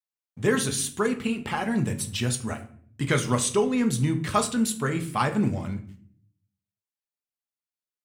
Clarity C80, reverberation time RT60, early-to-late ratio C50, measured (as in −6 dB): 17.0 dB, 0.55 s, 13.0 dB